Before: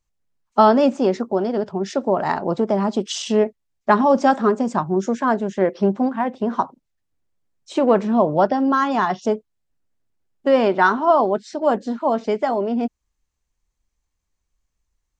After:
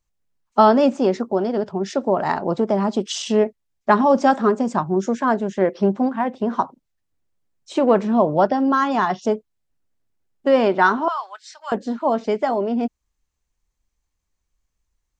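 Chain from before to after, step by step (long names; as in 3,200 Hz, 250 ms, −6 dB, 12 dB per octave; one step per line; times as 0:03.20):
0:11.08–0:11.72: high-pass filter 1,200 Hz 24 dB per octave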